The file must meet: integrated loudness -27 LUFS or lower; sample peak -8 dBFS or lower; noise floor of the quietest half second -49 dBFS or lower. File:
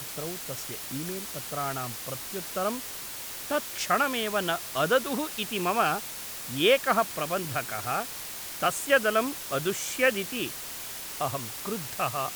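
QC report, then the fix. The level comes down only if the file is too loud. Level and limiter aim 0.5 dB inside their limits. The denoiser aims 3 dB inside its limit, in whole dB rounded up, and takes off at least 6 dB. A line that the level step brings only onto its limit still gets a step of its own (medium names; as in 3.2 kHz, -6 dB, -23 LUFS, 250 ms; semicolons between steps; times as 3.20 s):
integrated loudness -28.5 LUFS: pass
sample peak -9.0 dBFS: pass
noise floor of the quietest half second -38 dBFS: fail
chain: noise reduction 14 dB, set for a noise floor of -38 dBFS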